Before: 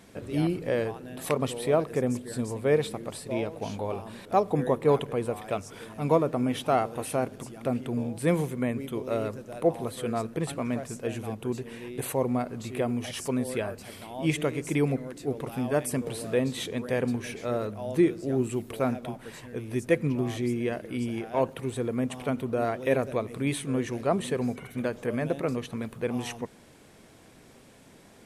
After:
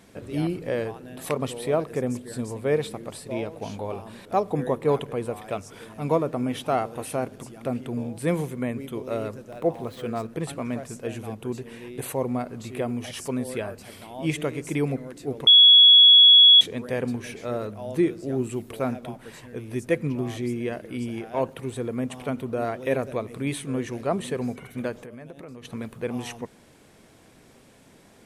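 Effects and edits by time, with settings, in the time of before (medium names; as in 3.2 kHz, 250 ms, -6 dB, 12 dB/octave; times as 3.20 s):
9.51–10.30 s: median filter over 5 samples
15.47–16.61 s: bleep 3.36 kHz -9 dBFS
24.92–25.65 s: compression 8:1, threshold -38 dBFS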